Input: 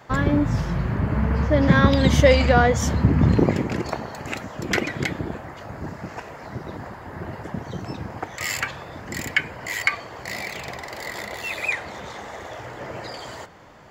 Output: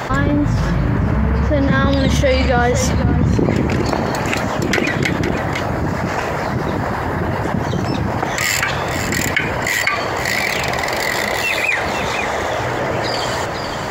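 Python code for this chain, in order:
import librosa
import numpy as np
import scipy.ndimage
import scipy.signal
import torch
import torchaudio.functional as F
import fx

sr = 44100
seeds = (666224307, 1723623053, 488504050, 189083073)

y = x + 10.0 ** (-15.0 / 20.0) * np.pad(x, (int(502 * sr / 1000.0), 0))[:len(x)]
y = fx.env_flatten(y, sr, amount_pct=70)
y = y * librosa.db_to_amplitude(-2.0)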